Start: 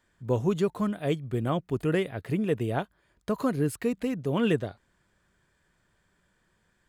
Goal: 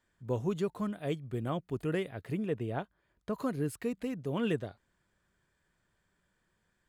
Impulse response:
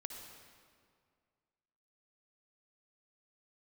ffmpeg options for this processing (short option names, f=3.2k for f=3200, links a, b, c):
-filter_complex "[0:a]asettb=1/sr,asplit=3[a][b][c];[a]atrim=end=2.464[d];[b]atrim=start=2.46:end=3.33,asetpts=PTS-STARTPTS,afade=t=in:d=0.004:c=qsin,afade=t=out:st=0.866:d=0.004:c=qsin,highshelf=f=5.3k:g=-10[e];[c]atrim=start=3.326[f];[d][e]acrossfade=d=0.004:c1=hsin:c2=qsin[g];[g][f]acrossfade=d=0.004:c1=qsin:c2=hsin,volume=-6.5dB"